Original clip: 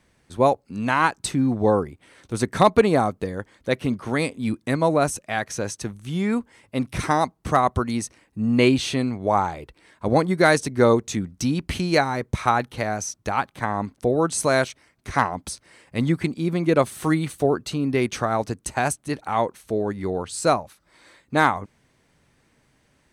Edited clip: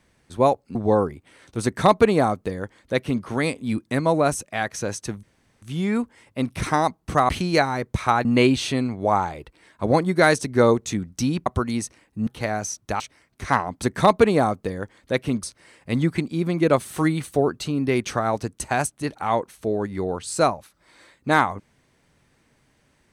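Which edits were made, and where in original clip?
0:00.75–0:01.51: remove
0:02.40–0:04.00: duplicate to 0:15.49
0:05.99: splice in room tone 0.39 s
0:07.66–0:08.47: swap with 0:11.68–0:12.64
0:13.37–0:14.66: remove

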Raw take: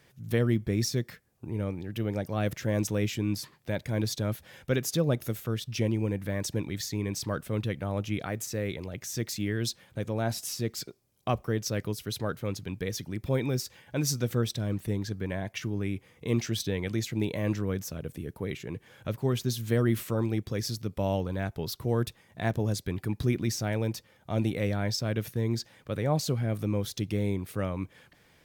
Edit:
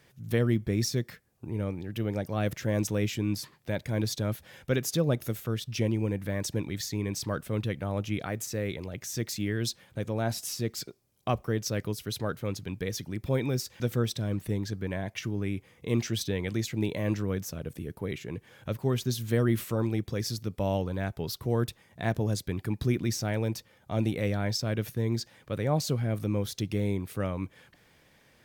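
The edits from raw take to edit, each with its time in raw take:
0:13.80–0:14.19: remove

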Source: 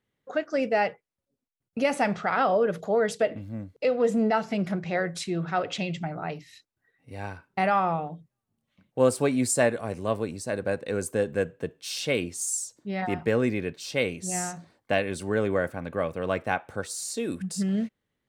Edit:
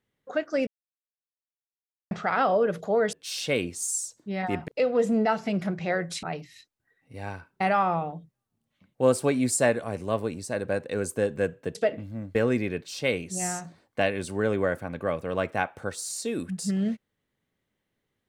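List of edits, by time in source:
0:00.67–0:02.11: silence
0:03.13–0:03.73: swap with 0:11.72–0:13.27
0:05.28–0:06.20: remove

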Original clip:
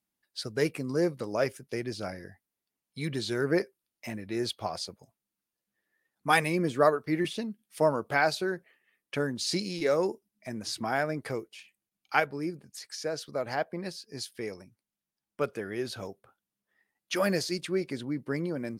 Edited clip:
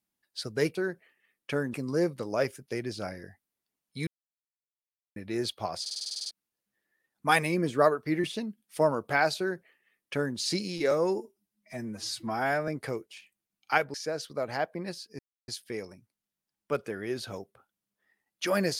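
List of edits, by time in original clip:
0:03.08–0:04.17: silence
0:04.82: stutter in place 0.05 s, 10 plays
0:08.39–0:09.38: duplicate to 0:00.75
0:09.92–0:11.10: time-stretch 1.5×
0:12.36–0:12.92: remove
0:14.17: splice in silence 0.29 s

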